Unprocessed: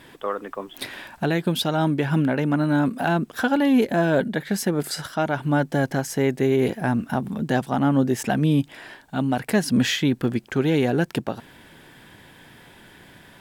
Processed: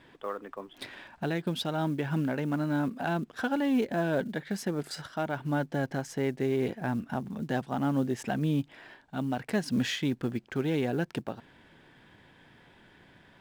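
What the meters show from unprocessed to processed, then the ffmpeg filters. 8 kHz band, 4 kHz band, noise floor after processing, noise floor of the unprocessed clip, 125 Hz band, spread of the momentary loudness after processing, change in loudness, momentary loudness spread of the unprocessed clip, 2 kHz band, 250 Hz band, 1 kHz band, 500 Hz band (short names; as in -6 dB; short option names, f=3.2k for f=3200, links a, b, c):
-11.5 dB, -9.0 dB, -59 dBFS, -50 dBFS, -8.5 dB, 10 LU, -8.5 dB, 10 LU, -8.5 dB, -8.5 dB, -8.5 dB, -8.5 dB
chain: -af "adynamicsmooth=sensitivity=6:basefreq=5.2k,acrusher=bits=8:mode=log:mix=0:aa=0.000001,volume=-8.5dB"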